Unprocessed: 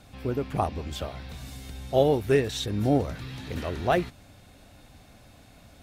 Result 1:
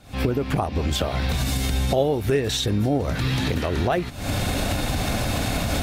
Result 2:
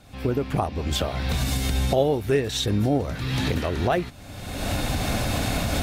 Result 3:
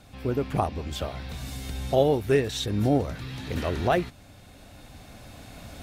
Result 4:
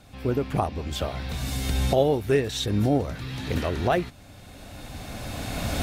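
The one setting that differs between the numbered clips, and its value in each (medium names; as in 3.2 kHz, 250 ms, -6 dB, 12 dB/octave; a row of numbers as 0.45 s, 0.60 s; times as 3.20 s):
recorder AGC, rising by: 90 dB/s, 37 dB/s, 5.5 dB/s, 14 dB/s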